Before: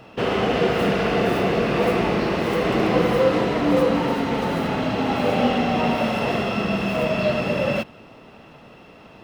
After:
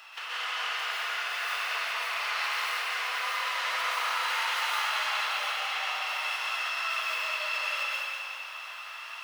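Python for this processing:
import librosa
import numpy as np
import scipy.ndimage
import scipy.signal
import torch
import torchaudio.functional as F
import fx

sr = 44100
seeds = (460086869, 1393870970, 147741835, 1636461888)

y = scipy.signal.sosfilt(scipy.signal.butter(4, 1100.0, 'highpass', fs=sr, output='sos'), x)
y = fx.high_shelf(y, sr, hz=3200.0, db=5.5)
y = fx.over_compress(y, sr, threshold_db=-35.0, ratio=-1.0)
y = fx.echo_feedback(y, sr, ms=194, feedback_pct=51, wet_db=-7)
y = fx.rev_plate(y, sr, seeds[0], rt60_s=1.5, hf_ratio=0.8, predelay_ms=110, drr_db=-7.0)
y = y * 10.0 ** (-5.0 / 20.0)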